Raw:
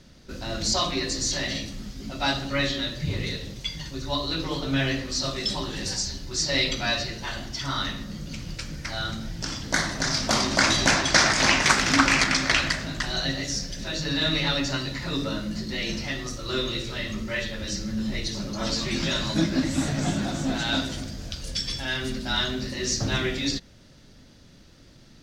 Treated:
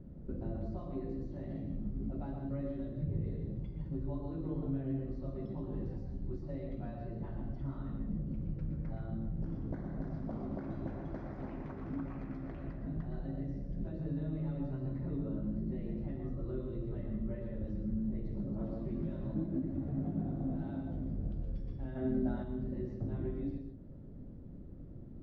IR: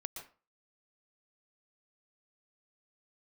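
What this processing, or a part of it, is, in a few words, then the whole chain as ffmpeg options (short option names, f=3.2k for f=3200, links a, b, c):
television next door: -filter_complex "[0:a]acompressor=threshold=-38dB:ratio=4,lowpass=400[a];[1:a]atrim=start_sample=2205[b];[a][b]afir=irnorm=-1:irlink=0,asplit=3[c][d][e];[c]afade=t=out:st=21.95:d=0.02[f];[d]equalizer=f=250:t=o:w=0.67:g=7,equalizer=f=630:t=o:w=0.67:g=10,equalizer=f=1.6k:t=o:w=0.67:g=7,equalizer=f=4k:t=o:w=0.67:g=4,afade=t=in:st=21.95:d=0.02,afade=t=out:st=22.42:d=0.02[g];[e]afade=t=in:st=22.42:d=0.02[h];[f][g][h]amix=inputs=3:normalize=0,volume=6.5dB"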